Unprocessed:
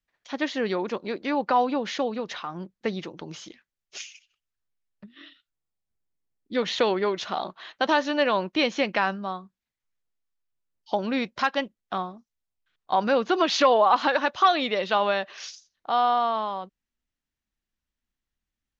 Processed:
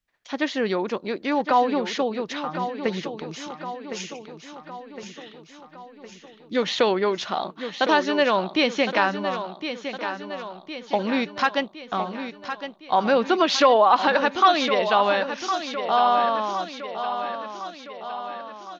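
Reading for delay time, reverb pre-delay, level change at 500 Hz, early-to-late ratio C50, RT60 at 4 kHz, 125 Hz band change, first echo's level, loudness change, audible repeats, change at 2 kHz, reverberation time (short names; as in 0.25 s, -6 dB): 1.061 s, none, +3.0 dB, none, none, +3.0 dB, -9.5 dB, +2.0 dB, 6, +3.0 dB, none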